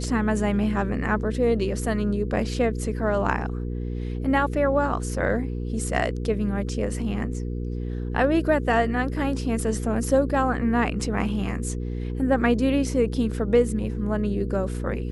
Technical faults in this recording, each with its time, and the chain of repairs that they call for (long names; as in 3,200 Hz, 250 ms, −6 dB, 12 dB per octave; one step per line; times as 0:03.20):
mains hum 60 Hz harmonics 8 −29 dBFS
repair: hum removal 60 Hz, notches 8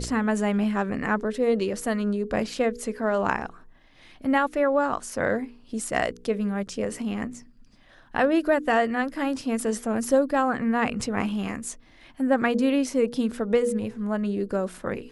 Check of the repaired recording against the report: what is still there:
none of them is left